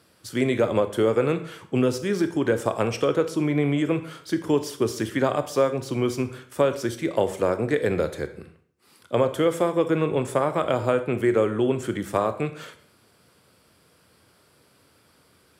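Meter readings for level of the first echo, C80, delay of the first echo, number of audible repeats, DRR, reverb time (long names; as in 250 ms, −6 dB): no echo audible, 15.5 dB, no echo audible, no echo audible, 9.5 dB, 0.60 s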